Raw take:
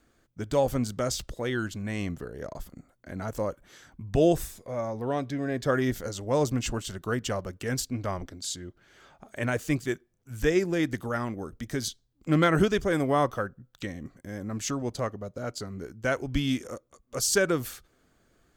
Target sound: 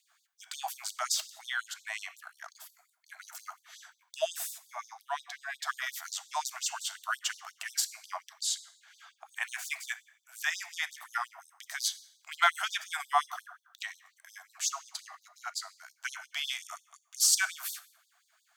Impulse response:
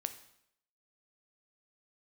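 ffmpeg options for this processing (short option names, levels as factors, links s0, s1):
-filter_complex "[0:a]asplit=2[s0][s1];[1:a]atrim=start_sample=2205[s2];[s1][s2]afir=irnorm=-1:irlink=0,volume=1.78[s3];[s0][s3]amix=inputs=2:normalize=0,afftfilt=real='re*gte(b*sr/1024,610*pow(3600/610,0.5+0.5*sin(2*PI*5.6*pts/sr)))':imag='im*gte(b*sr/1024,610*pow(3600/610,0.5+0.5*sin(2*PI*5.6*pts/sr)))':win_size=1024:overlap=0.75,volume=0.531"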